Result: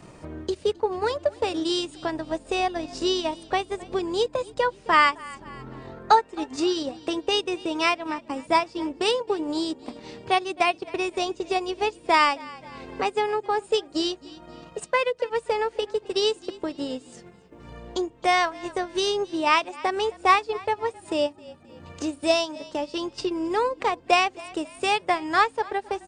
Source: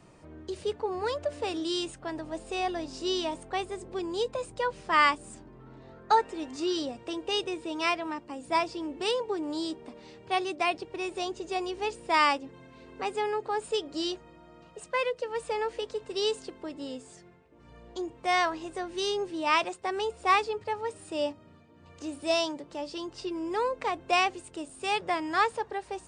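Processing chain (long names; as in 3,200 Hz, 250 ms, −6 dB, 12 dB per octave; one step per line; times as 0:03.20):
transient designer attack +4 dB, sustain −10 dB
echo with shifted repeats 263 ms, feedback 41%, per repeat −39 Hz, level −23.5 dB
in parallel at +2 dB: downward compressor, threshold −38 dBFS, peak gain reduction 21.5 dB
on the sum: level +2 dB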